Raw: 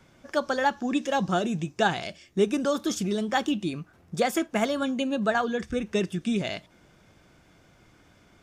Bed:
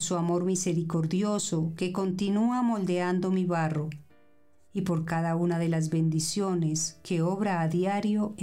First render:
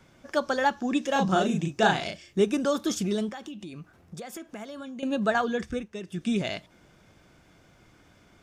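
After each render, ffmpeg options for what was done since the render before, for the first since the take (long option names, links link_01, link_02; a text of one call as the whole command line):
ffmpeg -i in.wav -filter_complex "[0:a]asettb=1/sr,asplit=3[link_01][link_02][link_03];[link_01]atrim=end=1.124[link_04];[link_02]atrim=start=1.12:end=2.41,asetpts=PTS-STARTPTS,afade=type=in:duration=0.004:curve=qsin,afade=type=out:start_time=1.286:duration=0.004:curve=qsin,asplit=2[link_05][link_06];[link_06]adelay=37,volume=-2.5dB[link_07];[link_05][link_07]amix=inputs=2:normalize=0,atrim=end_sample=56889[link_08];[link_03]atrim=start=2.406[link_09];[link_04][link_08]acrossfade=duration=0.004:curve1=hsin:curve2=qsin[link_10];[link_10][link_09]acrossfade=duration=0.004:curve1=qsin:curve2=hsin,asettb=1/sr,asplit=3[link_11][link_12][link_13];[link_11]atrim=end=3.294[link_14];[link_12]atrim=start=3.29:end=5.03,asetpts=PTS-STARTPTS,afade=type=in:duration=0.004:curve=qsin,afade=type=out:start_time=1.736:duration=0.004:curve=qsin,acompressor=threshold=-37dB:ratio=6:attack=3.2:release=140:knee=1:detection=peak[link_15];[link_13]atrim=start=5.026[link_16];[link_14][link_15]acrossfade=duration=0.004:curve1=hsin:curve2=qsin[link_17];[link_17][link_16]acrossfade=duration=0.004:curve1=qsin:curve2=hsin,asplit=3[link_18][link_19][link_20];[link_18]atrim=end=5.88,asetpts=PTS-STARTPTS,afade=type=out:start_time=5.61:duration=0.27:curve=qsin:silence=0.251189[link_21];[link_19]atrim=start=5.88:end=6.05,asetpts=PTS-STARTPTS,volume=-12dB[link_22];[link_20]atrim=start=6.05,asetpts=PTS-STARTPTS,afade=type=in:duration=0.27:curve=qsin:silence=0.251189[link_23];[link_21][link_22][link_23]concat=n=3:v=0:a=1" out.wav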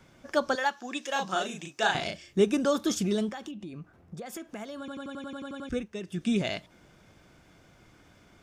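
ffmpeg -i in.wav -filter_complex "[0:a]asettb=1/sr,asplit=3[link_01][link_02][link_03];[link_01]atrim=end=0.554[link_04];[link_02]atrim=start=0.55:end=1.95,asetpts=PTS-STARTPTS,afade=type=in:duration=0.004:curve=qsin,afade=type=out:start_time=1.396:duration=0.004:curve=qsin,highpass=frequency=1100:poles=1[link_05];[link_03]atrim=start=1.946[link_06];[link_04][link_05]acrossfade=duration=0.004:curve1=hsin:curve2=qsin[link_07];[link_07][link_06]acrossfade=duration=0.004:curve1=qsin:curve2=hsin,asettb=1/sr,asplit=3[link_08][link_09][link_10];[link_08]atrim=end=3.514[link_11];[link_09]atrim=start=3.51:end=4.26,asetpts=PTS-STARTPTS,afade=type=in:duration=0.004:curve=qsin,afade=type=out:start_time=0.746:duration=0.004:curve=qsin,highshelf=frequency=2200:gain=-9.5[link_12];[link_10]atrim=start=4.256[link_13];[link_11][link_12]acrossfade=duration=0.004:curve1=hsin:curve2=qsin[link_14];[link_14][link_13]acrossfade=duration=0.004:curve1=qsin:curve2=hsin,asplit=11[link_15][link_16][link_17][link_18][link_19][link_20][link_21][link_22][link_23][link_24][link_25];[link_15]atrim=end=4.882[link_26];[link_16]atrim=start=4.788:end=4.882[link_27];[link_17]atrim=start=4.788:end=4.882[link_28];[link_18]atrim=start=4.788:end=4.882[link_29];[link_19]atrim=start=4.788:end=4.882[link_30];[link_20]atrim=start=4.788:end=4.882[link_31];[link_21]atrim=start=4.788:end=4.882[link_32];[link_22]atrim=start=4.788:end=4.882[link_33];[link_23]atrim=start=4.788:end=4.882[link_34];[link_24]atrim=start=4.788:end=4.882[link_35];[link_25]atrim=start=5.688[link_36];[link_26][link_27]acrossfade=duration=0.004:curve1=hsin:curve2=hsin[link_37];[link_37][link_28]acrossfade=duration=0.004:curve1=hsin:curve2=hsin[link_38];[link_38][link_29]acrossfade=duration=0.004:curve1=hsin:curve2=hsin[link_39];[link_39][link_30]acrossfade=duration=0.004:curve1=hsin:curve2=hsin[link_40];[link_40][link_31]acrossfade=duration=0.004:curve1=hsin:curve2=hsin[link_41];[link_41][link_32]acrossfade=duration=0.004:curve1=hsin:curve2=hsin[link_42];[link_42][link_33]acrossfade=duration=0.004:curve1=hsin:curve2=hsin[link_43];[link_43][link_34]acrossfade=duration=0.004:curve1=hsin:curve2=hsin[link_44];[link_44][link_35]acrossfade=duration=0.004:curve1=hsin:curve2=hsin[link_45];[link_45][link_36]acrossfade=duration=0.004:curve1=hsin:curve2=hsin" out.wav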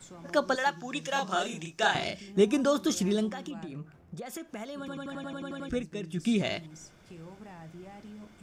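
ffmpeg -i in.wav -i bed.wav -filter_complex "[1:a]volume=-20dB[link_01];[0:a][link_01]amix=inputs=2:normalize=0" out.wav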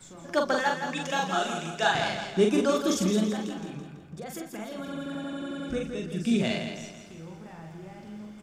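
ffmpeg -i in.wav -filter_complex "[0:a]asplit=2[link_01][link_02];[link_02]adelay=43,volume=-4dB[link_03];[link_01][link_03]amix=inputs=2:normalize=0,asplit=2[link_04][link_05];[link_05]aecho=0:1:166|332|498|664|830:0.422|0.198|0.0932|0.0438|0.0206[link_06];[link_04][link_06]amix=inputs=2:normalize=0" out.wav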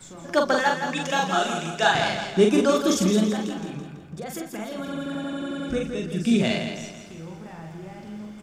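ffmpeg -i in.wav -af "volume=4.5dB" out.wav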